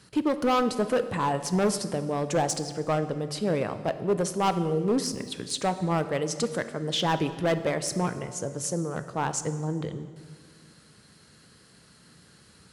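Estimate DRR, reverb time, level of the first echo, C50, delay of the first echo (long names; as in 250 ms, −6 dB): 10.5 dB, 1.8 s, no echo audible, 12.0 dB, no echo audible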